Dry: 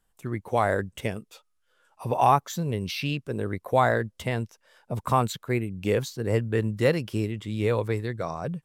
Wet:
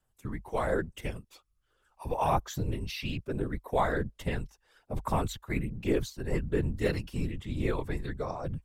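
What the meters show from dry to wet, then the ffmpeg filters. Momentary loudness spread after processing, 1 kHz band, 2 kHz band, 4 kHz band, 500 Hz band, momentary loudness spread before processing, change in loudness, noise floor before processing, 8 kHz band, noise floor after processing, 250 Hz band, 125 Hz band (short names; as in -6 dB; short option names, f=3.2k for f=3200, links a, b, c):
10 LU, -8.0 dB, -6.0 dB, -6.0 dB, -6.5 dB, 11 LU, -6.0 dB, -72 dBFS, -5.5 dB, -75 dBFS, -4.0 dB, -5.5 dB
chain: -af "afftfilt=real='hypot(re,im)*cos(2*PI*random(0))':imag='hypot(re,im)*sin(2*PI*random(1))':win_size=512:overlap=0.75,aphaser=in_gain=1:out_gain=1:delay=1.1:decay=0.33:speed=1.2:type=sinusoidal,afreqshift=-50"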